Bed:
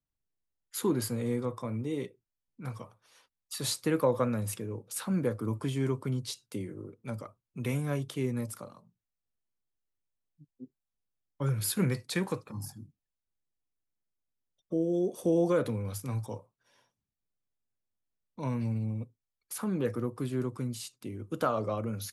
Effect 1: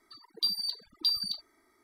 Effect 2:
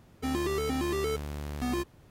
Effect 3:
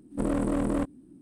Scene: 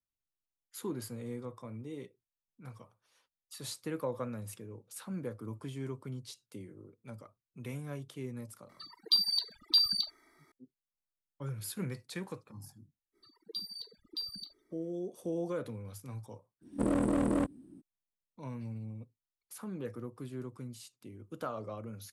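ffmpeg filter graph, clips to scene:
-filter_complex "[1:a]asplit=2[s0][s1];[0:a]volume=0.335[s2];[s0]equalizer=f=2300:t=o:w=2.5:g=4.5[s3];[s1]lowshelf=f=580:t=q:w=3:g=6.5[s4];[3:a]highpass=60[s5];[s3]atrim=end=1.83,asetpts=PTS-STARTPTS,volume=0.944,afade=t=in:d=0.004:c=hsin,afade=t=out:st=1.826:d=0.004:c=hsin,adelay=8690[s6];[s4]atrim=end=1.83,asetpts=PTS-STARTPTS,volume=0.282,afade=t=in:d=0.05,afade=t=out:st=1.78:d=0.05,adelay=13120[s7];[s5]atrim=end=1.21,asetpts=PTS-STARTPTS,volume=0.794,afade=t=in:d=0.02,afade=t=out:st=1.19:d=0.02,adelay=16610[s8];[s2][s6][s7][s8]amix=inputs=4:normalize=0"

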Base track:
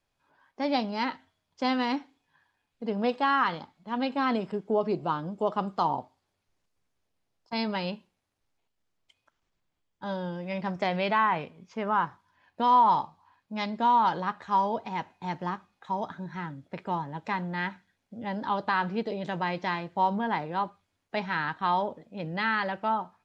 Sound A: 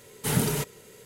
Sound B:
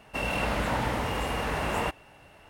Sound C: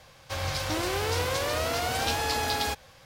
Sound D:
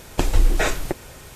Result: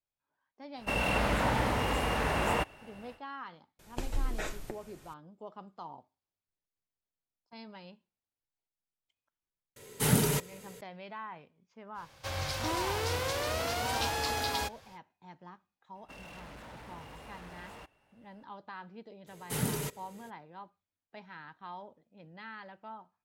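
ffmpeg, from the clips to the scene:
-filter_complex "[2:a]asplit=2[s0][s1];[1:a]asplit=2[s2][s3];[0:a]volume=0.119[s4];[4:a]flanger=delay=5:depth=6:regen=-81:speed=1.6:shape=triangular[s5];[s1]asoftclip=type=hard:threshold=0.0335[s6];[s0]atrim=end=2.49,asetpts=PTS-STARTPTS,volume=0.944,afade=t=in:d=0.1,afade=t=out:st=2.39:d=0.1,adelay=730[s7];[s5]atrim=end=1.35,asetpts=PTS-STARTPTS,volume=0.266,afade=t=in:d=0.004:c=hsin,afade=t=out:st=1.346:d=0.004:c=hsin,adelay=3790[s8];[s2]atrim=end=1.05,asetpts=PTS-STARTPTS,volume=0.891,afade=t=in:d=0.004:c=hsin,afade=t=out:st=1.046:d=0.004:c=hsin,adelay=9760[s9];[3:a]atrim=end=3.05,asetpts=PTS-STARTPTS,volume=0.596,afade=t=in:d=0.05,afade=t=out:st=3:d=0.05,adelay=11940[s10];[s6]atrim=end=2.49,asetpts=PTS-STARTPTS,volume=0.141,afade=t=in:d=0.004:c=hsin,afade=t=out:st=2.486:d=0.004:c=hsin,adelay=15950[s11];[s3]atrim=end=1.05,asetpts=PTS-STARTPTS,volume=0.422,afade=t=in:d=0.02,afade=t=out:st=1.03:d=0.02,adelay=19260[s12];[s4][s7][s8][s9][s10][s11][s12]amix=inputs=7:normalize=0"

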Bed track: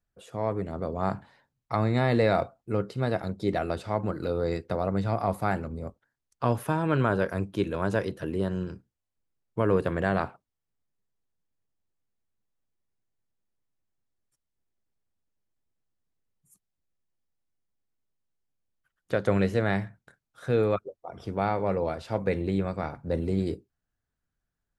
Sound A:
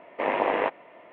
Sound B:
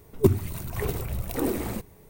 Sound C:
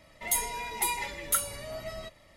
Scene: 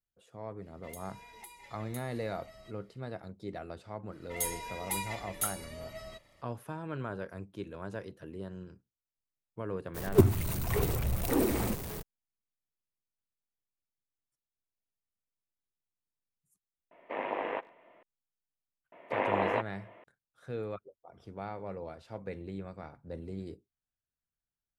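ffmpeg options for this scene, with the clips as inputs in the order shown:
-filter_complex "[3:a]asplit=2[s0][s1];[1:a]asplit=2[s2][s3];[0:a]volume=0.211[s4];[s0]acompressor=threshold=0.0141:ratio=12:attack=44:release=355:knee=1:detection=peak[s5];[2:a]aeval=exprs='val(0)+0.5*0.0237*sgn(val(0))':c=same[s6];[s2]asplit=2[s7][s8];[s8]adelay=100,highpass=300,lowpass=3400,asoftclip=type=hard:threshold=0.119,volume=0.0708[s9];[s7][s9]amix=inputs=2:normalize=0[s10];[s5]atrim=end=2.36,asetpts=PTS-STARTPTS,volume=0.211,afade=t=in:d=0.004:c=hsin,afade=t=out:st=2.356:d=0.004:c=hsin,adelay=620[s11];[s1]atrim=end=2.36,asetpts=PTS-STARTPTS,volume=0.501,afade=t=in:d=0.05,afade=t=out:st=2.31:d=0.05,adelay=180369S[s12];[s6]atrim=end=2.09,asetpts=PTS-STARTPTS,volume=0.75,afade=t=in:d=0.02,afade=t=out:st=2.07:d=0.02,adelay=438354S[s13];[s10]atrim=end=1.12,asetpts=PTS-STARTPTS,volume=0.316,afade=t=in:d=0.004:c=hsin,afade=t=out:st=1.116:d=0.004:c=hsin,adelay=16910[s14];[s3]atrim=end=1.12,asetpts=PTS-STARTPTS,volume=0.562,afade=t=in:d=0.004:c=hsin,afade=t=out:st=1.116:d=0.004:c=hsin,adelay=834372S[s15];[s4][s11][s12][s13][s14][s15]amix=inputs=6:normalize=0"

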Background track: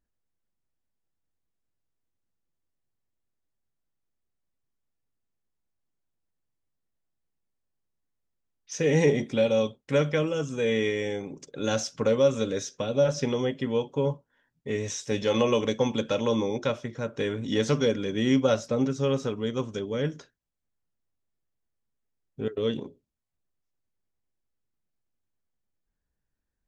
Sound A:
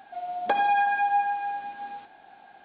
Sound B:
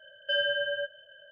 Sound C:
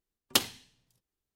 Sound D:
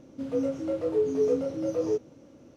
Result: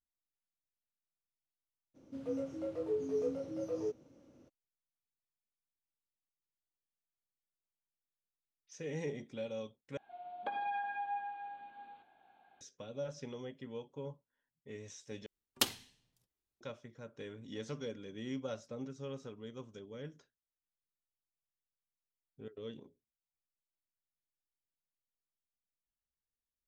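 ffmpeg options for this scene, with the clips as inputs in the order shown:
-filter_complex "[0:a]volume=0.126[s0];[1:a]bandreject=f=1900:w=7.3[s1];[s0]asplit=3[s2][s3][s4];[s2]atrim=end=9.974[s5];[s1]atrim=end=2.64,asetpts=PTS-STARTPTS,volume=0.178[s6];[s3]atrim=start=12.606:end=15.264[s7];[3:a]atrim=end=1.35,asetpts=PTS-STARTPTS,volume=0.501[s8];[s4]atrim=start=16.606[s9];[4:a]atrim=end=2.56,asetpts=PTS-STARTPTS,volume=0.316,afade=t=in:d=0.02,afade=t=out:st=2.54:d=0.02,adelay=1940[s10];[s5][s6]acrossfade=d=0.004:c1=hsin:c2=hsin[s11];[s11][s7]acrossfade=d=0.004:c1=hsin:c2=hsin[s12];[s12][s8]acrossfade=d=0.004:c1=hsin:c2=hsin[s13];[s13][s9]acrossfade=d=0.004:c1=hsin:c2=hsin[s14];[s14][s10]amix=inputs=2:normalize=0"

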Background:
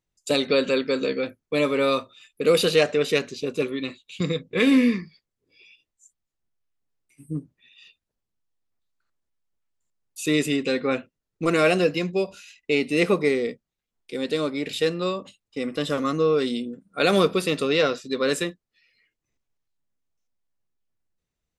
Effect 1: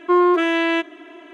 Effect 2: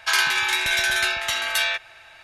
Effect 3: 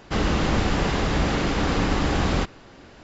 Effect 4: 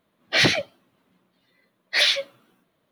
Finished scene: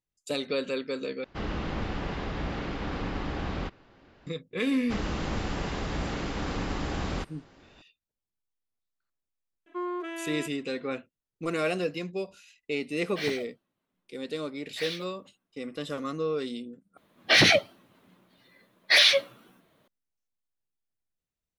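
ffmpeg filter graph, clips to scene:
-filter_complex "[3:a]asplit=2[s0][s1];[4:a]asplit=2[s2][s3];[0:a]volume=0.355[s4];[s0]lowpass=4000[s5];[s2]acrusher=bits=5:mode=log:mix=0:aa=0.000001[s6];[s3]alimiter=level_in=4.73:limit=0.891:release=50:level=0:latency=1[s7];[s4]asplit=3[s8][s9][s10];[s8]atrim=end=1.244[s11];[s5]atrim=end=3.03,asetpts=PTS-STARTPTS,volume=0.299[s12];[s9]atrim=start=4.266:end=16.974[s13];[s7]atrim=end=2.91,asetpts=PTS-STARTPTS,volume=0.376[s14];[s10]atrim=start=19.876[s15];[s1]atrim=end=3.03,asetpts=PTS-STARTPTS,volume=0.335,afade=t=in:d=0.004:c=hsin,afade=t=out:st=3.026:d=0.004:c=hsin,adelay=4790[s16];[1:a]atrim=end=1.33,asetpts=PTS-STARTPTS,volume=0.126,afade=t=in:d=0.004:c=hsin,afade=t=out:st=1.326:d=0.004:c=hsin,adelay=9660[s17];[s6]atrim=end=2.91,asetpts=PTS-STARTPTS,volume=0.141,afade=t=in:d=0.004:c=hsin,afade=t=out:st=2.906:d=0.004:c=hsin,adelay=12830[s18];[s11][s12]acrossfade=d=0.004:c1=hsin:c2=hsin[s19];[s19][s13]acrossfade=d=0.004:c1=hsin:c2=hsin[s20];[s20][s14]acrossfade=d=0.004:c1=hsin:c2=hsin[s21];[s21][s15]acrossfade=d=0.004:c1=hsin:c2=hsin[s22];[s22][s16][s17][s18]amix=inputs=4:normalize=0"

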